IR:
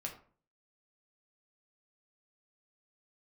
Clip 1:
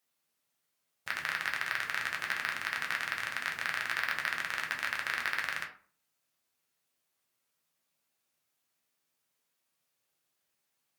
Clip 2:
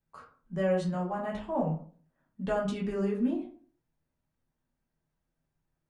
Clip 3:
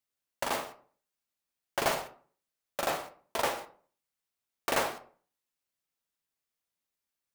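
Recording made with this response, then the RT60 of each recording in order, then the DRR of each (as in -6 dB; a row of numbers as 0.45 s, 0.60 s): 1; 0.45 s, 0.45 s, 0.45 s; 0.0 dB, -5.0 dB, 6.0 dB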